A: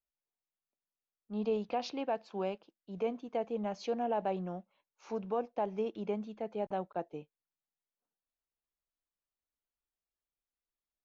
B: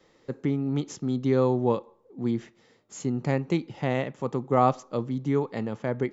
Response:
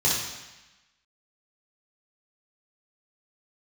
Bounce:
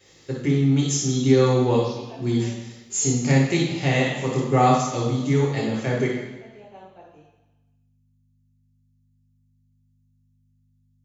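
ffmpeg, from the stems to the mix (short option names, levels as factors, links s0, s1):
-filter_complex "[0:a]aeval=exprs='val(0)+0.00282*(sin(2*PI*50*n/s)+sin(2*PI*2*50*n/s)/2+sin(2*PI*3*50*n/s)/3+sin(2*PI*4*50*n/s)/4+sin(2*PI*5*50*n/s)/5)':c=same,volume=0.112,asplit=2[s0][s1];[s1]volume=0.668[s2];[1:a]equalizer=f=1000:w=4:g=-6,volume=0.708,asplit=2[s3][s4];[s4]volume=0.501[s5];[2:a]atrim=start_sample=2205[s6];[s2][s5]amix=inputs=2:normalize=0[s7];[s7][s6]afir=irnorm=-1:irlink=0[s8];[s0][s3][s8]amix=inputs=3:normalize=0,highpass=f=130:p=1,highshelf=f=2300:g=12"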